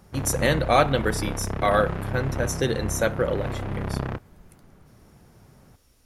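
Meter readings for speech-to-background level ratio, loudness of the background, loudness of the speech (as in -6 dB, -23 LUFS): 6.5 dB, -31.0 LUFS, -24.5 LUFS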